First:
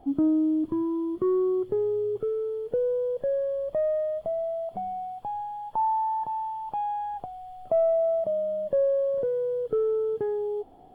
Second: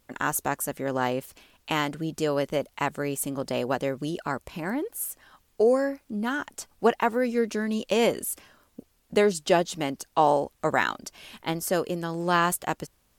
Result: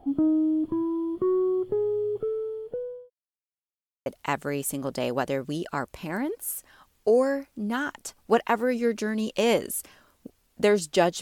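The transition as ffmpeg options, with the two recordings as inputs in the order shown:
-filter_complex "[0:a]apad=whole_dur=11.21,atrim=end=11.21,asplit=2[a][b];[a]atrim=end=3.1,asetpts=PTS-STARTPTS,afade=t=out:st=2.03:d=1.07:c=qsin[c];[b]atrim=start=3.1:end=4.06,asetpts=PTS-STARTPTS,volume=0[d];[1:a]atrim=start=2.59:end=9.74,asetpts=PTS-STARTPTS,afade=t=in:d=0.004:c=hsin[e];[c][d][e]concat=n=3:v=0:a=1"

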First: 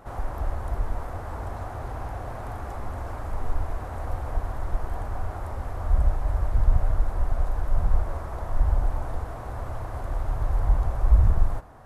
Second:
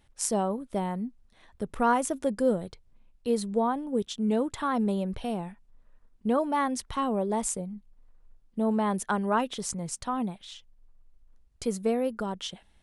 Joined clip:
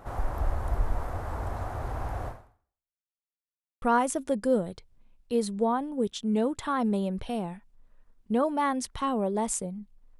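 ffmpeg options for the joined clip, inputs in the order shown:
-filter_complex "[0:a]apad=whole_dur=10.19,atrim=end=10.19,asplit=2[a][b];[a]atrim=end=3.06,asetpts=PTS-STARTPTS,afade=t=out:st=2.27:d=0.79:c=exp[c];[b]atrim=start=3.06:end=3.82,asetpts=PTS-STARTPTS,volume=0[d];[1:a]atrim=start=1.77:end=8.14,asetpts=PTS-STARTPTS,afade=t=in:d=0.004:c=hsin[e];[c][d][e]concat=n=3:v=0:a=1"

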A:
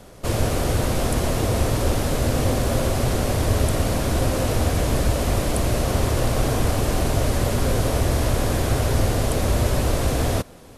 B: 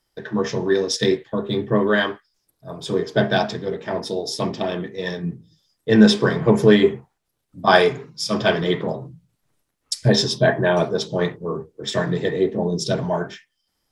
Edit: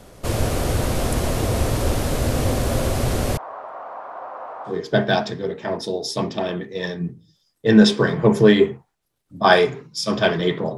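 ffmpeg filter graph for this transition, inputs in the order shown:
-filter_complex "[0:a]asettb=1/sr,asplit=3[a][b][c];[a]atrim=end=3.374[d];[b]atrim=start=3.37:end=4.82,asetpts=PTS-STARTPTS,afade=t=in:d=0.004:c=qsin,afade=t=out:st=1.446:d=0.004:c=qsin,asuperpass=centerf=960:order=4:qfactor=1.7[e];[c]atrim=start=4.816[f];[d][e]acrossfade=d=0.004:c1=hsin:c2=qsin[g];[g][f]acrossfade=d=0.004:c1=qsin:c2=hsin,apad=whole_dur=10.77,atrim=end=10.77,atrim=end=4.82,asetpts=PTS-STARTPTS[h];[1:a]atrim=start=2.87:end=9,asetpts=PTS-STARTPTS[i];[h][i]acrossfade=d=0.18:c1=tri:c2=tri"

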